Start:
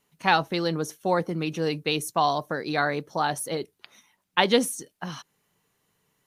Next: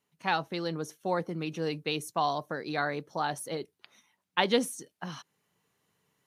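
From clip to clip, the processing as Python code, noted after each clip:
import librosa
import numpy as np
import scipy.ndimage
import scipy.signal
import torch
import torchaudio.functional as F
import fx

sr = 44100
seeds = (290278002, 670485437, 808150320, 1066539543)

y = fx.rider(x, sr, range_db=4, speed_s=2.0)
y = scipy.signal.sosfilt(scipy.signal.butter(2, 71.0, 'highpass', fs=sr, output='sos'), y)
y = fx.high_shelf(y, sr, hz=10000.0, db=-5.5)
y = F.gain(torch.from_numpy(y), -6.5).numpy()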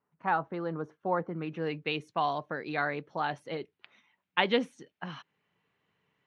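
y = fx.filter_sweep_lowpass(x, sr, from_hz=1300.0, to_hz=2600.0, start_s=1.14, end_s=1.89, q=1.5)
y = F.gain(torch.from_numpy(y), -1.5).numpy()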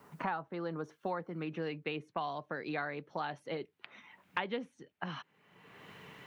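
y = fx.band_squash(x, sr, depth_pct=100)
y = F.gain(torch.from_numpy(y), -6.5).numpy()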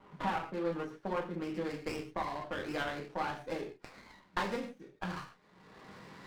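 y = fx.rev_gated(x, sr, seeds[0], gate_ms=170, shape='falling', drr_db=-2.0)
y = fx.env_lowpass(y, sr, base_hz=2500.0, full_db=-32.0)
y = fx.running_max(y, sr, window=9)
y = F.gain(torch.from_numpy(y), -1.5).numpy()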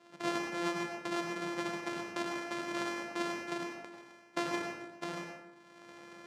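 y = np.r_[np.sort(x[:len(x) // 128 * 128].reshape(-1, 128), axis=1).ravel(), x[len(x) // 128 * 128:]]
y = fx.bandpass_edges(y, sr, low_hz=250.0, high_hz=6400.0)
y = fx.rev_plate(y, sr, seeds[1], rt60_s=0.89, hf_ratio=0.45, predelay_ms=80, drr_db=2.5)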